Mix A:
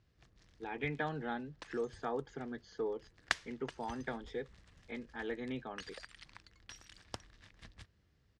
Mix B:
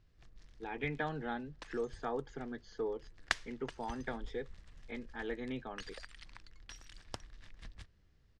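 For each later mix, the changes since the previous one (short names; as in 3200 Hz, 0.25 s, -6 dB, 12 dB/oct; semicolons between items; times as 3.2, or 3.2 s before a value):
second sound: remove HPF 65 Hz 12 dB/oct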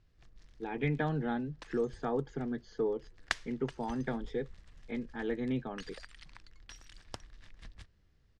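speech: add low shelf 380 Hz +11.5 dB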